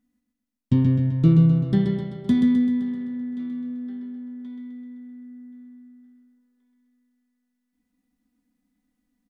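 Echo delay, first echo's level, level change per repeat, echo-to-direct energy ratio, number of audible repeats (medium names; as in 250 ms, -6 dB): 129 ms, -4.5 dB, -5.0 dB, -3.0 dB, 7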